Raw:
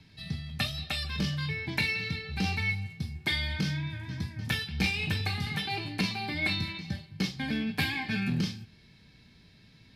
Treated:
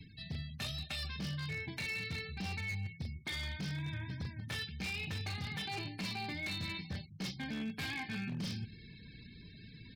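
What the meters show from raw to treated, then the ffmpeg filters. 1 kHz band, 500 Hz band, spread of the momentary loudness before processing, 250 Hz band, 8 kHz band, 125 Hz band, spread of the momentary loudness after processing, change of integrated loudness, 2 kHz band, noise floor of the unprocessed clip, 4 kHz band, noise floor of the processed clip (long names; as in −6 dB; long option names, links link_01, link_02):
−8.0 dB, −8.0 dB, 8 LU, −9.0 dB, −5.5 dB, −7.5 dB, 9 LU, −8.5 dB, −9.0 dB, −58 dBFS, −8.0 dB, −54 dBFS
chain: -filter_complex "[0:a]areverse,acompressor=threshold=-43dB:ratio=5,areverse,asplit=2[link_01][link_02];[link_02]adelay=100,lowpass=frequency=1000:poles=1,volume=-21dB,asplit=2[link_03][link_04];[link_04]adelay=100,lowpass=frequency=1000:poles=1,volume=0.4,asplit=2[link_05][link_06];[link_06]adelay=100,lowpass=frequency=1000:poles=1,volume=0.4[link_07];[link_01][link_03][link_05][link_07]amix=inputs=4:normalize=0,afftfilt=real='re*gte(hypot(re,im),0.00126)':imag='im*gte(hypot(re,im),0.00126)':win_size=1024:overlap=0.75,aeval=exprs='0.0126*(abs(mod(val(0)/0.0126+3,4)-2)-1)':channel_layout=same,volume=5dB"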